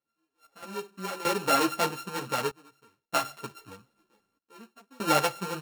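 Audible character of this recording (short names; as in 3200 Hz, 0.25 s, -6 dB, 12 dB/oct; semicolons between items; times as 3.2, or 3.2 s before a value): a buzz of ramps at a fixed pitch in blocks of 32 samples; random-step tremolo 1.6 Hz, depth 95%; a shimmering, thickened sound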